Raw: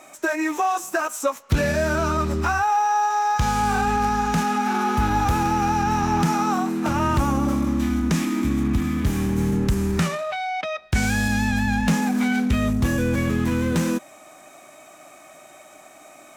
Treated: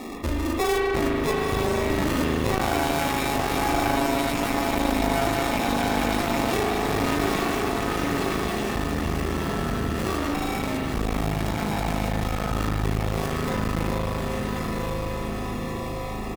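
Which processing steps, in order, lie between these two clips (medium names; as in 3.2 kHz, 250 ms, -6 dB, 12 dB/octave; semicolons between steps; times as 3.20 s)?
tracing distortion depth 0.34 ms; low-pass 1.3 kHz 12 dB/octave; resonant low shelf 750 Hz -11.5 dB, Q 3; band-stop 910 Hz, Q 5.7; sample-and-hold 29×; doubling 21 ms -10.5 dB; echo that smears into a reverb 998 ms, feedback 48%, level -5 dB; spring tank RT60 2.3 s, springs 38 ms, chirp 70 ms, DRR -1 dB; one-sided clip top -28 dBFS; level flattener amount 50%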